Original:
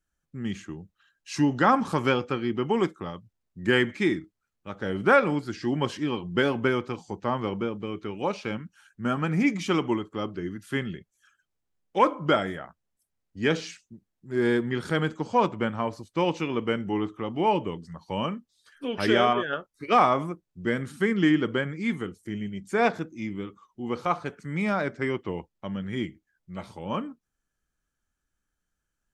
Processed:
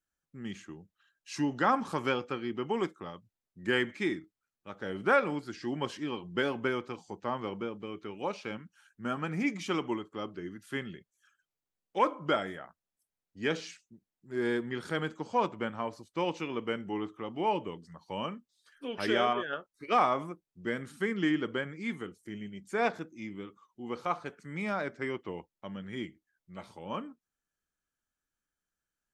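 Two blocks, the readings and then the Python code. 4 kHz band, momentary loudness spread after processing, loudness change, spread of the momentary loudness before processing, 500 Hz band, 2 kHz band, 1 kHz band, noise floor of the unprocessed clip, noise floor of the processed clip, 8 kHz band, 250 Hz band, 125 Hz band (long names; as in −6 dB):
−5.5 dB, 16 LU, −6.5 dB, 15 LU, −6.5 dB, −5.5 dB, −5.5 dB, −82 dBFS, below −85 dBFS, −5.5 dB, −8.0 dB, −10.5 dB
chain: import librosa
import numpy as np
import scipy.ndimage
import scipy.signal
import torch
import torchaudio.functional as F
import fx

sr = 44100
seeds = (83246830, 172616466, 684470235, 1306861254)

y = fx.low_shelf(x, sr, hz=150.0, db=-9.5)
y = F.gain(torch.from_numpy(y), -5.5).numpy()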